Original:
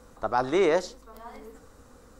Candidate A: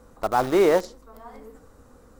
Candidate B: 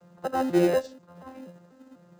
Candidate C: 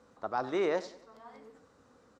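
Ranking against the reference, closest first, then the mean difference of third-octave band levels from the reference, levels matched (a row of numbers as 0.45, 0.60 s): C, A, B; 2.5, 4.0, 6.5 dB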